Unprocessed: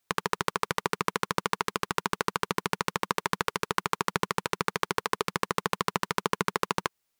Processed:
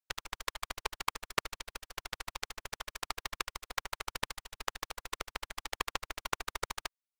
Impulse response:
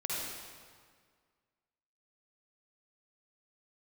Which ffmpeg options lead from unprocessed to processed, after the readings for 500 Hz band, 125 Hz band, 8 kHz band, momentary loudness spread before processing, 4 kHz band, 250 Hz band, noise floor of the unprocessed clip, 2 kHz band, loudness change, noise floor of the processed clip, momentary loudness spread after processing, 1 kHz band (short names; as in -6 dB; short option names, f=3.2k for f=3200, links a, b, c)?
-14.5 dB, -16.0 dB, -5.0 dB, 2 LU, -5.0 dB, -18.5 dB, -79 dBFS, -8.5 dB, -9.5 dB, under -85 dBFS, 6 LU, -11.5 dB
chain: -af "afftfilt=real='hypot(re,im)*cos(2*PI*random(0))':imag='hypot(re,im)*sin(2*PI*random(1))':win_size=512:overlap=0.75,aeval=exprs='0.158*(cos(1*acos(clip(val(0)/0.158,-1,1)))-cos(1*PI/2))+0.0562*(cos(3*acos(clip(val(0)/0.158,-1,1)))-cos(3*PI/2))+0.0112*(cos(4*acos(clip(val(0)/0.158,-1,1)))-cos(4*PI/2))+0.0112*(cos(6*acos(clip(val(0)/0.158,-1,1)))-cos(6*PI/2))':c=same,equalizer=f=200:w=0.7:g=-10.5,volume=8.5dB"